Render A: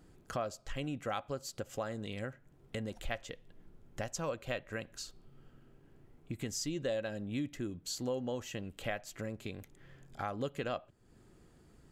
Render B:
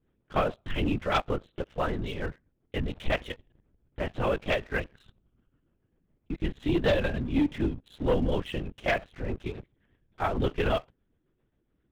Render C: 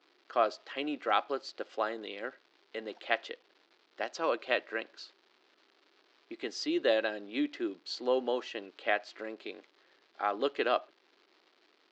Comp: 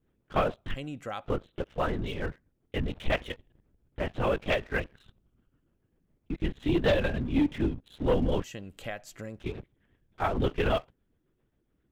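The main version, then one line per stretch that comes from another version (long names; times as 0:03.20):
B
0:00.74–0:01.25: punch in from A
0:08.44–0:09.39: punch in from A
not used: C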